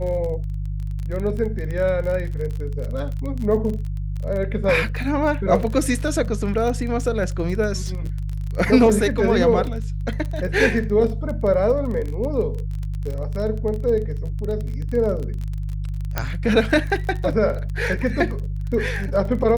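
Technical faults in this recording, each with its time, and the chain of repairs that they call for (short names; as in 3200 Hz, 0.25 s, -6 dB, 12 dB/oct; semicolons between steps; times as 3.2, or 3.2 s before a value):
crackle 28/s -27 dBFS
hum 50 Hz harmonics 3 -26 dBFS
16.18 pop -7 dBFS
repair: de-click; de-hum 50 Hz, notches 3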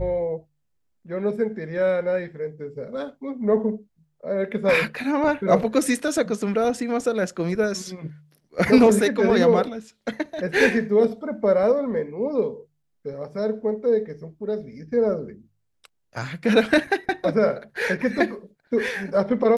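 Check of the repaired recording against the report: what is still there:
16.18 pop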